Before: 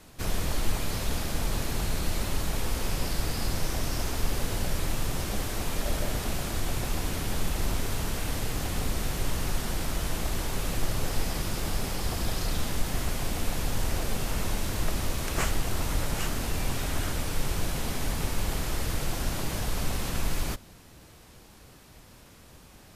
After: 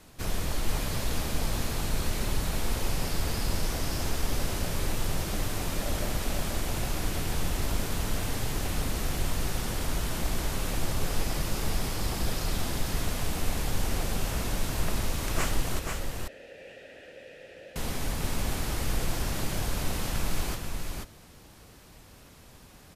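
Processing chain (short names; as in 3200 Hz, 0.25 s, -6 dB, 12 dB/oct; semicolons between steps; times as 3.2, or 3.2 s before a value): 15.79–17.76 vowel filter e; echo 0.486 s -4.5 dB; gain -1.5 dB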